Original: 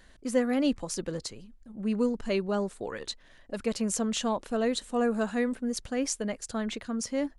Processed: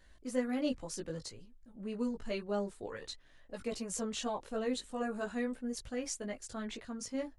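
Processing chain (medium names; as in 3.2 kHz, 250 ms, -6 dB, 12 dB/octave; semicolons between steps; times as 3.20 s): chorus voices 6, 0.49 Hz, delay 18 ms, depth 1.9 ms; trim -4.5 dB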